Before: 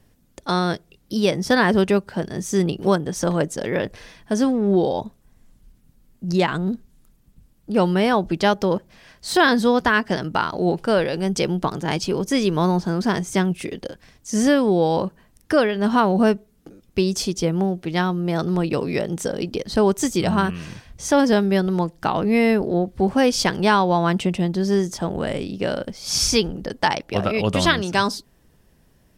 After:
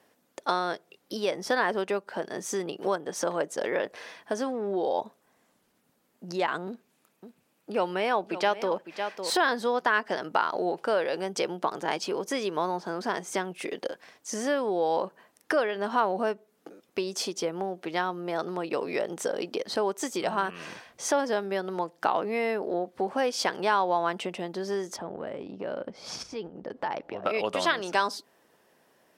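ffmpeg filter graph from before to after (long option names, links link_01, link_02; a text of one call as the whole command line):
ffmpeg -i in.wav -filter_complex "[0:a]asettb=1/sr,asplit=3[link_01][link_02][link_03];[link_01]atrim=end=6.674[link_04];[link_02]atrim=start=6.67:end=9.3,asetpts=PTS-STARTPTS,afade=type=in:duration=0.004:curve=qsin,afade=type=out:start_time=2.626:duration=0.004:curve=qsin,highpass=86,equalizer=frequency=2500:width=4:gain=6,aecho=1:1:555:0.178,atrim=end_sample=115983[link_05];[link_03]atrim=start=9.296[link_06];[link_04][link_05]acrossfade=duration=0.004:curve1=hsin:curve2=qsin[link_07];[link_07][link_06]acrossfade=duration=0.004:curve1=qsin:curve2=hsin,asettb=1/sr,asplit=3[link_08][link_09][link_10];[link_08]atrim=end=24.964[link_11];[link_09]atrim=start=24.96:end=27.26,asetpts=PTS-STARTPTS,afade=type=in:duration=0.004:curve=qsin,afade=type=out:start_time=2.296:duration=0.004:curve=qsin,aemphasis=mode=reproduction:type=riaa,acompressor=threshold=-28dB:ratio=4:attack=3.2:release=140:knee=1:detection=peak[link_12];[link_10]atrim=start=27.256[link_13];[link_11][link_12]acrossfade=duration=0.004:curve1=hsin:curve2=qsin[link_14];[link_14][link_13]acrossfade=duration=0.004:curve1=qsin:curve2=hsin,highshelf=frequency=2300:gain=-9,acompressor=threshold=-27dB:ratio=2.5,highpass=520,volume=5dB" out.wav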